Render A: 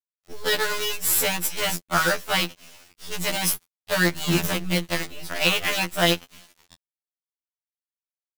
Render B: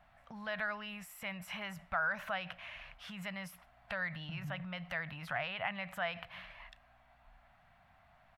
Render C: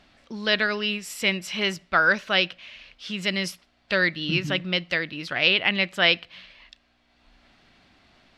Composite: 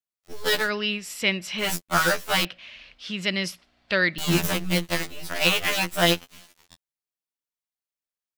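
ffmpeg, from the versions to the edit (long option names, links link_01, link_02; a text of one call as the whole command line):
ffmpeg -i take0.wav -i take1.wav -i take2.wav -filter_complex "[2:a]asplit=2[link_01][link_02];[0:a]asplit=3[link_03][link_04][link_05];[link_03]atrim=end=0.71[link_06];[link_01]atrim=start=0.55:end=1.73[link_07];[link_04]atrim=start=1.57:end=2.452[link_08];[link_02]atrim=start=2.448:end=4.182[link_09];[link_05]atrim=start=4.178[link_10];[link_06][link_07]acrossfade=duration=0.16:curve1=tri:curve2=tri[link_11];[link_11][link_08]acrossfade=duration=0.16:curve1=tri:curve2=tri[link_12];[link_12][link_09]acrossfade=duration=0.004:curve1=hsin:curve2=hsin[link_13];[link_13][link_10]acrossfade=duration=0.004:curve1=hsin:curve2=hsin" out.wav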